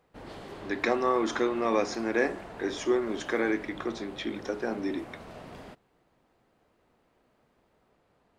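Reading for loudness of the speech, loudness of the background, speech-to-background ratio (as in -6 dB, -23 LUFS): -30.0 LUFS, -44.5 LUFS, 14.5 dB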